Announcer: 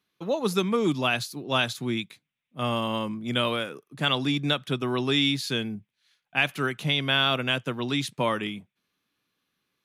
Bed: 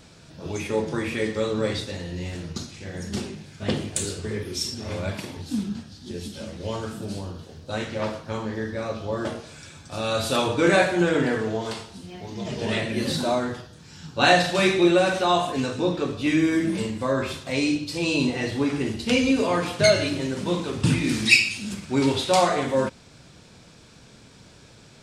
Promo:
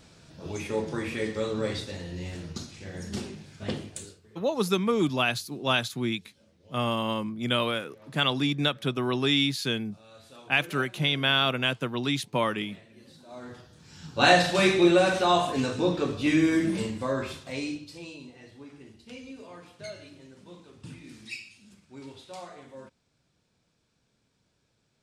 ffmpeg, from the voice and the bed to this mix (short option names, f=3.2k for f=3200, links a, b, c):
-filter_complex "[0:a]adelay=4150,volume=-0.5dB[a];[1:a]volume=21dB,afade=t=out:st=3.54:d=0.66:silence=0.0749894,afade=t=in:st=13.28:d=0.97:silence=0.0530884,afade=t=out:st=16.54:d=1.65:silence=0.0841395[b];[a][b]amix=inputs=2:normalize=0"